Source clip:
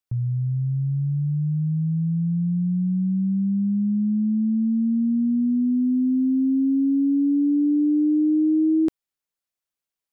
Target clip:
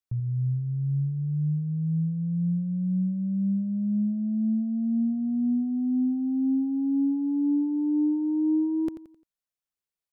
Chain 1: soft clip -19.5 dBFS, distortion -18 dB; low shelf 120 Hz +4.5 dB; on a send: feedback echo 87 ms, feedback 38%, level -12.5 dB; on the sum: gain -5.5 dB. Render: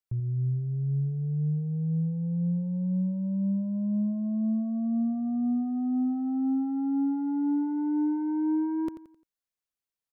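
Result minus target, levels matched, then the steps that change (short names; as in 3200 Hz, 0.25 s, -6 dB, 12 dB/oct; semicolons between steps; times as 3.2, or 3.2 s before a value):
soft clip: distortion +13 dB
change: soft clip -11.5 dBFS, distortion -31 dB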